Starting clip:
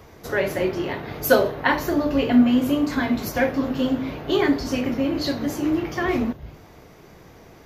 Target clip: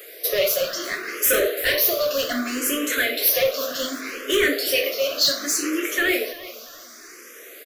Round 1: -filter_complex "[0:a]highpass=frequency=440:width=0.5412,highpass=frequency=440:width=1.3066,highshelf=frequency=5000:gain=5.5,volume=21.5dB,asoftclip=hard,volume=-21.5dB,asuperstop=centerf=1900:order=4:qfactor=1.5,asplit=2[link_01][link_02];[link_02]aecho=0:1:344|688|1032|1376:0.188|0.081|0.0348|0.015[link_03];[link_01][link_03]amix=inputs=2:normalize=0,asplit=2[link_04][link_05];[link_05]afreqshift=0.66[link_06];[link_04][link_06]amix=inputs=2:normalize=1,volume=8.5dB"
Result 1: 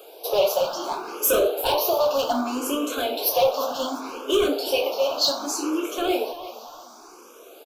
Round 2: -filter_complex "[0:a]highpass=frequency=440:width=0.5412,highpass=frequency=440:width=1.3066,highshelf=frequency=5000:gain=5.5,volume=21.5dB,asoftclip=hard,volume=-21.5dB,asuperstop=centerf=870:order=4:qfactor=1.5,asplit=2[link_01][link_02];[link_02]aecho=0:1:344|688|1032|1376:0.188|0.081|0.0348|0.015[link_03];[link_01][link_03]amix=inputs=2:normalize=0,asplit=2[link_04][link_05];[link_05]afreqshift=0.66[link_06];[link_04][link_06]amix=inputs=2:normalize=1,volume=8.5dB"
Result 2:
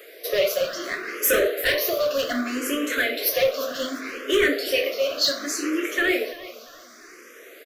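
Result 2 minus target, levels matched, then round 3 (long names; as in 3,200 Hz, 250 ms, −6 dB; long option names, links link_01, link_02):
8,000 Hz band −3.5 dB
-filter_complex "[0:a]highpass=frequency=440:width=0.5412,highpass=frequency=440:width=1.3066,highshelf=frequency=5000:gain=17,volume=21.5dB,asoftclip=hard,volume=-21.5dB,asuperstop=centerf=870:order=4:qfactor=1.5,asplit=2[link_01][link_02];[link_02]aecho=0:1:344|688|1032|1376:0.188|0.081|0.0348|0.015[link_03];[link_01][link_03]amix=inputs=2:normalize=0,asplit=2[link_04][link_05];[link_05]afreqshift=0.66[link_06];[link_04][link_06]amix=inputs=2:normalize=1,volume=8.5dB"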